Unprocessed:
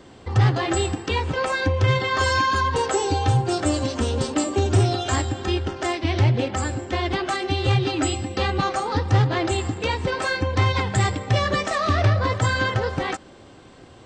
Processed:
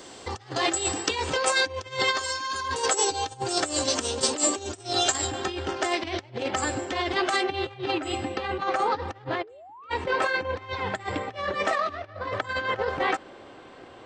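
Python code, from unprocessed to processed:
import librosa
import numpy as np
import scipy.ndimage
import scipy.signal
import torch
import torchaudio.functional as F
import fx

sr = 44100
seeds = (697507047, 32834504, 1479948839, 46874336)

y = fx.spec_paint(x, sr, seeds[0], shape='rise', start_s=9.43, length_s=0.47, low_hz=400.0, high_hz=1400.0, level_db=-13.0)
y = fx.over_compress(y, sr, threshold_db=-25.0, ratio=-0.5)
y = fx.bass_treble(y, sr, bass_db=-13, treble_db=fx.steps((0.0, 11.0), (5.26, 1.0), (7.41, -11.0)))
y = y * 10.0 ** (-1.0 / 20.0)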